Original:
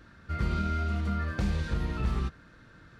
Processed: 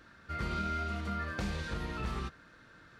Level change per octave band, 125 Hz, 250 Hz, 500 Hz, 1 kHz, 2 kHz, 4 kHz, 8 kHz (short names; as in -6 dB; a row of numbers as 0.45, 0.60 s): -8.5 dB, -5.5 dB, -2.5 dB, -0.5 dB, 0.0 dB, 0.0 dB, n/a